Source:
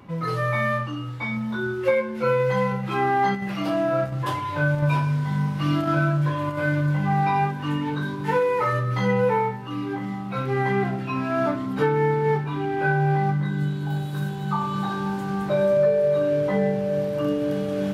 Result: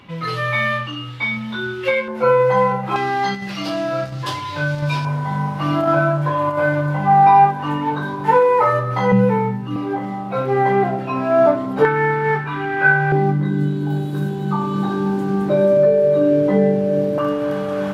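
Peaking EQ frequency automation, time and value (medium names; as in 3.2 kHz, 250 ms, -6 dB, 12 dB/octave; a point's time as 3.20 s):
peaking EQ +13 dB 1.5 oct
3.1 kHz
from 2.08 s 790 Hz
from 2.96 s 4.7 kHz
from 5.05 s 780 Hz
from 9.12 s 180 Hz
from 9.76 s 610 Hz
from 11.85 s 1.6 kHz
from 13.12 s 310 Hz
from 17.18 s 1.1 kHz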